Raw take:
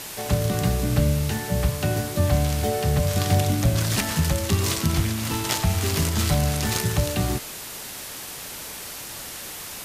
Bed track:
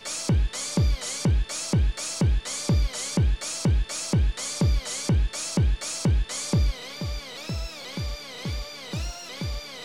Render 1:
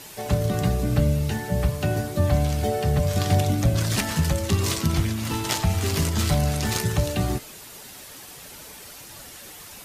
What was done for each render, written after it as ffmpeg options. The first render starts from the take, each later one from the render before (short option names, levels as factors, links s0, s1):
-af "afftdn=nr=8:nf=-36"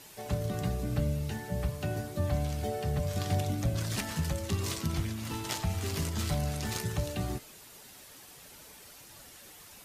-af "volume=0.335"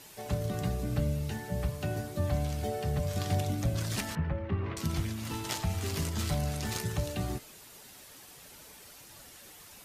-filter_complex "[0:a]asettb=1/sr,asplit=3[s0][s1][s2];[s0]atrim=end=4.154[s3];[s1]atrim=start=4.15:end=4.77,asetpts=PTS-STARTPTS,afade=t=in:d=0.004:c=qsin,afade=t=out:st=0.616:d=0.004:c=qsin,lowpass=f=2200:w=0.5412,lowpass=f=2200:w=1.3066[s4];[s2]atrim=start=4.766[s5];[s3][s4]acrossfade=d=0.004:c1=hsin:c2=qsin[s6];[s6][s5]acrossfade=d=0.004:c1=qsin:c2=hsin"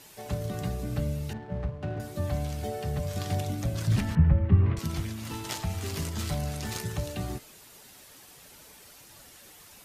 -filter_complex "[0:a]asettb=1/sr,asplit=3[s0][s1][s2];[s0]atrim=end=1.334[s3];[s1]atrim=start=1.33:end=2,asetpts=PTS-STARTPTS,afade=t=in:d=0.004:c=qsin,afade=t=out:st=0.666:d=0.004:c=qsin,adynamicsmooth=sensitivity=6.5:basefreq=580[s4];[s2]atrim=start=1.996[s5];[s3][s4]acrossfade=d=0.004:c1=hsin:c2=qsin[s6];[s6][s5]acrossfade=d=0.004:c1=qsin:c2=hsin,asettb=1/sr,asplit=3[s7][s8][s9];[s7]atrim=end=3.874[s10];[s8]atrim=start=3.87:end=4.79,asetpts=PTS-STARTPTS,afade=t=in:d=0.004:c=qsin,afade=t=out:st=0.916:d=0.004:c=qsin,bass=f=250:g=13,treble=f=4000:g=-7[s11];[s9]atrim=start=4.786[s12];[s10][s11]acrossfade=d=0.004:c1=hsin:c2=qsin[s13];[s13][s12]acrossfade=d=0.004:c1=qsin:c2=hsin"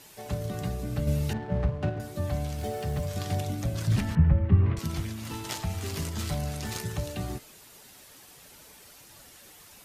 -filter_complex "[0:a]asettb=1/sr,asplit=3[s0][s1][s2];[s0]atrim=end=1.074[s3];[s1]atrim=start=1.07:end=1.9,asetpts=PTS-STARTPTS,afade=t=in:d=0.004:c=qsin,afade=t=out:st=0.826:d=0.004:c=qsin,acontrast=38[s4];[s2]atrim=start=1.896[s5];[s3][s4]acrossfade=d=0.004:c1=hsin:c2=qsin[s6];[s6][s5]acrossfade=d=0.004:c1=qsin:c2=hsin,asettb=1/sr,asplit=3[s7][s8][s9];[s7]atrim=end=2.584[s10];[s8]atrim=start=2.58:end=3.06,asetpts=PTS-STARTPTS,afade=t=in:d=0.004:c=qsin,afade=t=out:st=0.476:d=0.004:c=qsin,aeval=exprs='val(0)+0.5*0.00596*sgn(val(0))':c=same[s11];[s9]atrim=start=3.056[s12];[s10][s11]acrossfade=d=0.004:c1=hsin:c2=qsin[s13];[s13][s12]acrossfade=d=0.004:c1=qsin:c2=hsin"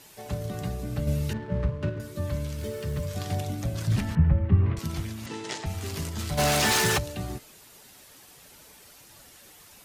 -filter_complex "[0:a]asettb=1/sr,asplit=3[s0][s1][s2];[s0]atrim=end=1.134[s3];[s1]atrim=start=1.13:end=3.15,asetpts=PTS-STARTPTS,afade=t=in:d=0.004:c=qsin,afade=t=out:st=2.016:d=0.004:c=qsin,asuperstop=centerf=750:order=4:qfactor=3.7[s4];[s2]atrim=start=3.146[s5];[s3][s4]acrossfade=d=0.004:c1=hsin:c2=qsin[s6];[s6][s5]acrossfade=d=0.004:c1=qsin:c2=hsin,asettb=1/sr,asplit=3[s7][s8][s9];[s7]atrim=end=5.264[s10];[s8]atrim=start=5.26:end=5.66,asetpts=PTS-STARTPTS,afade=t=in:d=0.004:c=qsin,afade=t=out:st=0.396:d=0.004:c=qsin,highpass=f=140:w=0.5412,highpass=f=140:w=1.3066,equalizer=f=420:t=q:w=4:g=9,equalizer=f=1200:t=q:w=4:g=-3,equalizer=f=1900:t=q:w=4:g=5,lowpass=f=8100:w=0.5412,lowpass=f=8100:w=1.3066[s11];[s9]atrim=start=5.656[s12];[s10][s11]acrossfade=d=0.004:c1=hsin:c2=qsin[s13];[s13][s12]acrossfade=d=0.004:c1=qsin:c2=hsin,asplit=3[s14][s15][s16];[s14]afade=t=out:st=6.37:d=0.02[s17];[s15]asplit=2[s18][s19];[s19]highpass=f=720:p=1,volume=39.8,asoftclip=type=tanh:threshold=0.2[s20];[s18][s20]amix=inputs=2:normalize=0,lowpass=f=6800:p=1,volume=0.501,afade=t=in:st=6.37:d=0.02,afade=t=out:st=6.97:d=0.02[s21];[s16]afade=t=in:st=6.97:d=0.02[s22];[s17][s21][s22]amix=inputs=3:normalize=0"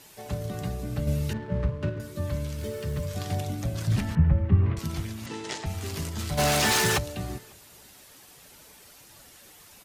-filter_complex "[0:a]asplit=2[s0][s1];[s1]adelay=548.1,volume=0.0355,highshelf=f=4000:g=-12.3[s2];[s0][s2]amix=inputs=2:normalize=0"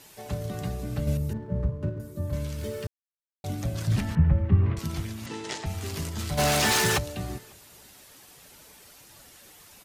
-filter_complex "[0:a]asettb=1/sr,asplit=3[s0][s1][s2];[s0]atrim=end=1.174[s3];[s1]atrim=start=1.17:end=2.33,asetpts=PTS-STARTPTS,afade=t=in:d=0.004:c=qsin,afade=t=out:st=1.156:d=0.004:c=qsin,equalizer=f=3000:w=0.4:g=-14[s4];[s2]atrim=start=2.326[s5];[s3][s4]acrossfade=d=0.004:c1=hsin:c2=qsin[s6];[s6][s5]acrossfade=d=0.004:c1=qsin:c2=hsin,asplit=3[s7][s8][s9];[s7]atrim=end=2.87,asetpts=PTS-STARTPTS,afade=t=out:st=2.866:d=0.004:c=hsin[s10];[s8]atrim=start=2.87:end=3.44,asetpts=PTS-STARTPTS,volume=0[s11];[s9]atrim=start=3.44,asetpts=PTS-STARTPTS,afade=t=in:d=0.004:c=hsin[s12];[s10][s11][s12]concat=n=3:v=0:a=1"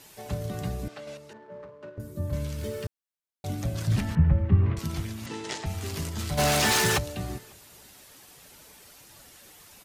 -filter_complex "[0:a]asettb=1/sr,asplit=3[s0][s1][s2];[s0]atrim=end=0.884[s3];[s1]atrim=start=0.88:end=1.98,asetpts=PTS-STARTPTS,afade=t=in:d=0.004:c=qsin,afade=t=out:st=1.096:d=0.004:c=qsin,highpass=610,lowpass=5500[s4];[s2]atrim=start=1.976[s5];[s3][s4]acrossfade=d=0.004:c1=hsin:c2=qsin[s6];[s6][s5]acrossfade=d=0.004:c1=qsin:c2=hsin"